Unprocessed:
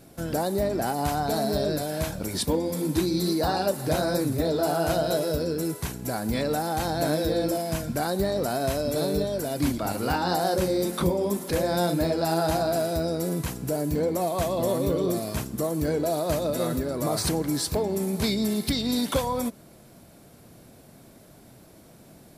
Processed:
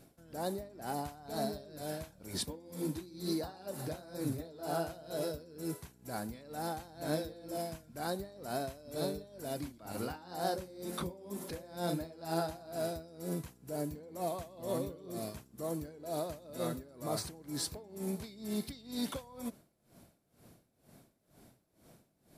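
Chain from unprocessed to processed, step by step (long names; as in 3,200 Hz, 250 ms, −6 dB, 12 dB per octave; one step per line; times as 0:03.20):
tremolo with a sine in dB 2.1 Hz, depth 20 dB
level −7.5 dB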